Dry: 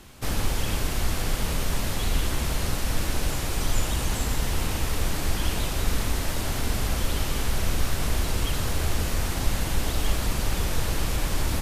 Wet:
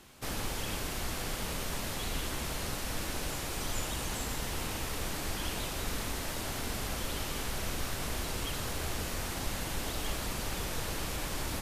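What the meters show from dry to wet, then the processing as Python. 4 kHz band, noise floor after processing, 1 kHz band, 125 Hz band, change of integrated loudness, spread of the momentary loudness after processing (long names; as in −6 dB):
−5.5 dB, −38 dBFS, −5.5 dB, −11.5 dB, −7.5 dB, 1 LU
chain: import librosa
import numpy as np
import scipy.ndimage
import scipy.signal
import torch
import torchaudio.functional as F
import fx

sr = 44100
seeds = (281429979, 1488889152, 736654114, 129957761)

y = fx.low_shelf(x, sr, hz=130.0, db=-9.0)
y = y * librosa.db_to_amplitude(-5.5)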